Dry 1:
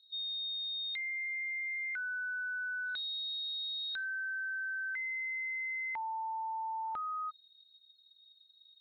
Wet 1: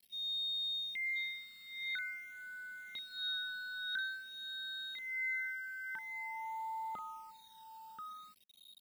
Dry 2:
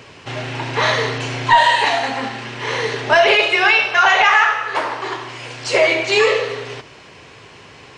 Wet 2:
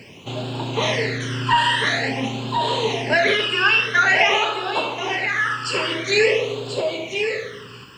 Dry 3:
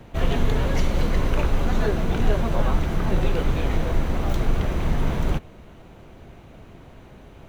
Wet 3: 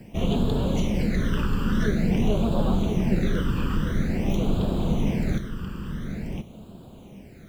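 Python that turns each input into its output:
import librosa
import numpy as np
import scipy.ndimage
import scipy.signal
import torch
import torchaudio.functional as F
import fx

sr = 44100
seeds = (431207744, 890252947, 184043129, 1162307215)

p1 = fx.low_shelf(x, sr, hz=70.0, db=-9.5)
p2 = p1 + fx.echo_single(p1, sr, ms=1034, db=-7.0, dry=0)
p3 = fx.quant_dither(p2, sr, seeds[0], bits=10, dither='none')
p4 = fx.peak_eq(p3, sr, hz=200.0, db=8.5, octaves=0.44)
y = fx.phaser_stages(p4, sr, stages=12, low_hz=670.0, high_hz=2000.0, hz=0.48, feedback_pct=20)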